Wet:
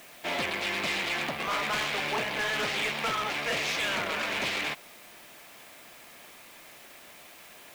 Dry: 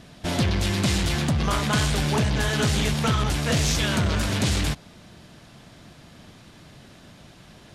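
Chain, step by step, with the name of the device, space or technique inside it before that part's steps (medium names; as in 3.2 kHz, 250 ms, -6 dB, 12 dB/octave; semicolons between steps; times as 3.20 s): drive-through speaker (band-pass 510–3400 Hz; peaking EQ 2.3 kHz +7 dB 0.5 oct; hard clipper -25.5 dBFS, distortion -10 dB; white noise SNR 21 dB); band-stop 1.5 kHz, Q 28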